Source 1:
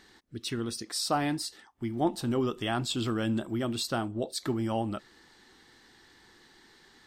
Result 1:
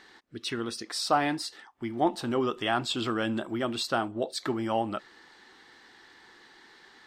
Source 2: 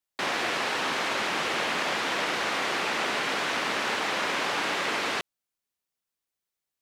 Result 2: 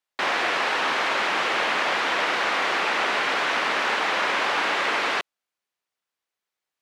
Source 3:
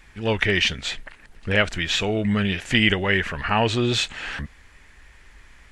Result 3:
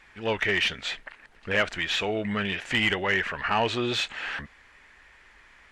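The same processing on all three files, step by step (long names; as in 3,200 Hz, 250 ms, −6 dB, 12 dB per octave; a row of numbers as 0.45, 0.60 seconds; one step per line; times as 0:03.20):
mid-hump overdrive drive 16 dB, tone 2,300 Hz, clips at −1 dBFS
normalise the peak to −12 dBFS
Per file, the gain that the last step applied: −3.0, −3.0, −9.0 decibels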